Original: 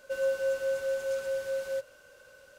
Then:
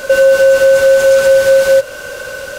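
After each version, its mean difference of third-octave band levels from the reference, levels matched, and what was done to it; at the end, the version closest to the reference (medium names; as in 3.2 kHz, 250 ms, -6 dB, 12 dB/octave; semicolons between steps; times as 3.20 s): 3.0 dB: in parallel at +1 dB: compression, threshold -42 dBFS, peak gain reduction 16 dB; on the sum: loudness maximiser +24.5 dB; trim -1 dB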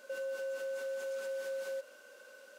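4.5 dB: brick-wall FIR high-pass 190 Hz; peak limiter -33 dBFS, peak gain reduction 12 dB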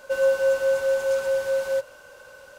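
1.5 dB: peaking EQ 910 Hz +9.5 dB 0.6 oct; trim +7 dB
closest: third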